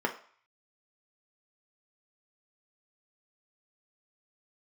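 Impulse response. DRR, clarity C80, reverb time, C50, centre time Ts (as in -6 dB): 2.0 dB, 16.5 dB, 0.50 s, 12.0 dB, 12 ms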